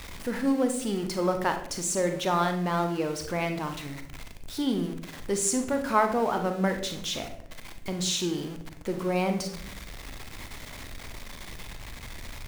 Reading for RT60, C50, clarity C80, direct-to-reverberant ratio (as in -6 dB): 0.70 s, 8.5 dB, 12.5 dB, 6.0 dB